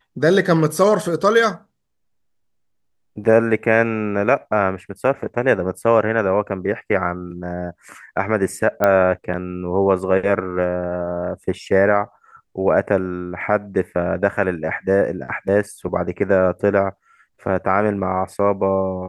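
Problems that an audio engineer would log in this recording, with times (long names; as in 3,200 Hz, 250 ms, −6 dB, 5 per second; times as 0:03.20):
0:08.84: click −5 dBFS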